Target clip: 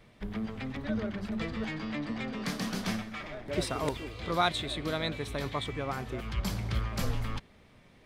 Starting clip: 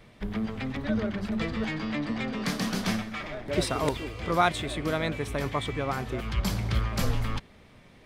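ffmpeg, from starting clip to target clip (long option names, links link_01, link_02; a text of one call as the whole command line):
ffmpeg -i in.wav -filter_complex "[0:a]asettb=1/sr,asplit=3[link_01][link_02][link_03];[link_01]atrim=end=4.114[link_04];[link_02]atrim=start=4.11:end=5.64,asetpts=PTS-STARTPTS,afade=type=in:duration=0.004:curve=qsin,afade=type=out:start_time=1.526:duration=0.004:curve=qsin,equalizer=frequency=3900:width=3.9:gain=9.5[link_05];[link_03]atrim=start=5.636[link_06];[link_04][link_05]acrossfade=duration=0.004:curve1=hsin:curve2=qsin[link_07];[link_07][link_06]acrossfade=duration=0.004:curve1=qsin:curve2=hsin,volume=-4.5dB" out.wav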